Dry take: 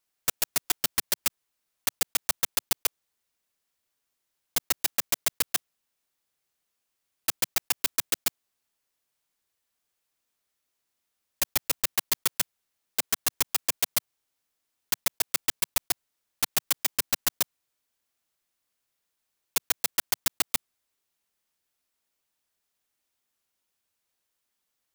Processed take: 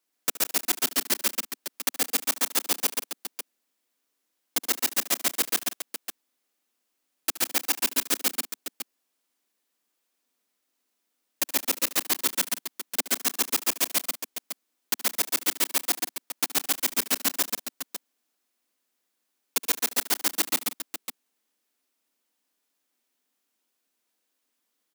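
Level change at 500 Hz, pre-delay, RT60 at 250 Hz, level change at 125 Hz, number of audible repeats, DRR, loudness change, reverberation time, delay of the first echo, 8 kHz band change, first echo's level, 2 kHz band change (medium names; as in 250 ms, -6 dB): +4.5 dB, no reverb, no reverb, no reading, 4, no reverb, +1.5 dB, no reverb, 72 ms, +2.0 dB, -16.0 dB, +2.5 dB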